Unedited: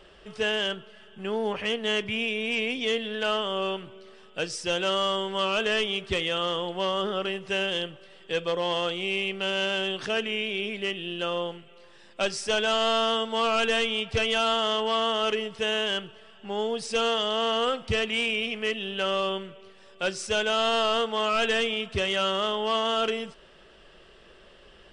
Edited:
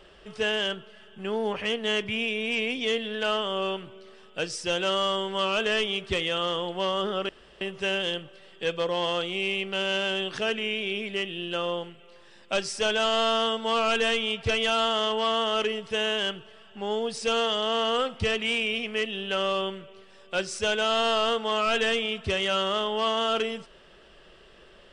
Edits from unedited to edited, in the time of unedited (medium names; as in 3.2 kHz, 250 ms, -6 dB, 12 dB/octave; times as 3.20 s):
7.29 s: insert room tone 0.32 s